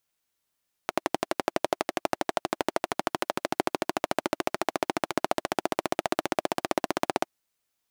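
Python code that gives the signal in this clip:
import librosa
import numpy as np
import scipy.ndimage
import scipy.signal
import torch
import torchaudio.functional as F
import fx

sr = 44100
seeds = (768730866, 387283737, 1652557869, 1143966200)

y = fx.engine_single_rev(sr, seeds[0], length_s=6.38, rpm=1400, resonances_hz=(350.0, 630.0), end_rpm=1900)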